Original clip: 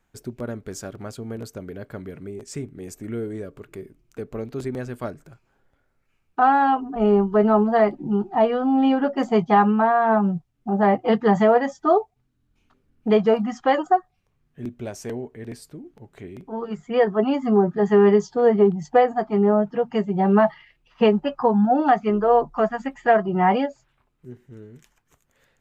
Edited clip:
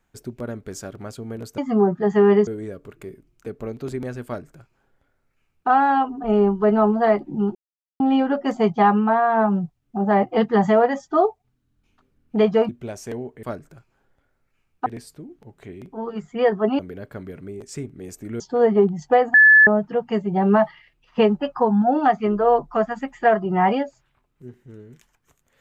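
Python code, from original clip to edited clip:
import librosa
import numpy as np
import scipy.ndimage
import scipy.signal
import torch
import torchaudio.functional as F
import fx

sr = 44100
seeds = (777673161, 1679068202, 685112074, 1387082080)

y = fx.edit(x, sr, fx.swap(start_s=1.58, length_s=1.61, other_s=17.34, other_length_s=0.89),
    fx.duplicate(start_s=4.98, length_s=1.43, to_s=15.41),
    fx.silence(start_s=8.27, length_s=0.45),
    fx.cut(start_s=13.41, length_s=1.26),
    fx.bleep(start_s=19.17, length_s=0.33, hz=1730.0, db=-7.5), tone=tone)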